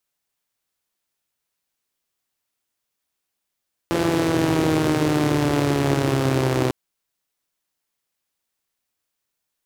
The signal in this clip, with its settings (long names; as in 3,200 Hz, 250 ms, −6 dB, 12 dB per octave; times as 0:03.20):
pulse-train model of a four-cylinder engine, changing speed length 2.80 s, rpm 5,100, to 3,800, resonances 130/310 Hz